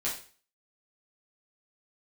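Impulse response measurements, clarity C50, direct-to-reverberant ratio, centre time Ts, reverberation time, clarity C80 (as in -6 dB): 6.5 dB, -7.5 dB, 29 ms, 0.40 s, 11.5 dB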